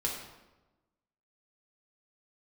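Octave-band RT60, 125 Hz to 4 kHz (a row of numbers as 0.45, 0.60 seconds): 1.3, 1.3, 1.1, 1.0, 0.85, 0.75 seconds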